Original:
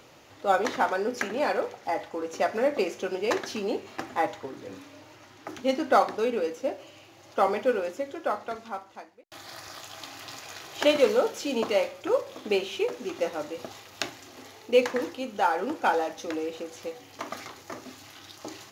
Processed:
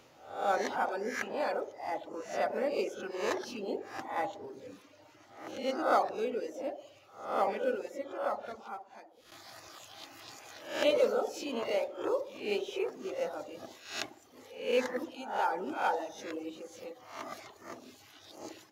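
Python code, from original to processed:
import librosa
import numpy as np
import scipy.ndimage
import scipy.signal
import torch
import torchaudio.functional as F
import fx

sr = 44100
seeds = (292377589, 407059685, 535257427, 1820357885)

y = fx.spec_swells(x, sr, rise_s=0.58)
y = fx.echo_wet_bandpass(y, sr, ms=60, feedback_pct=64, hz=470.0, wet_db=-4)
y = fx.dereverb_blind(y, sr, rt60_s=0.9)
y = y * librosa.db_to_amplitude(-8.5)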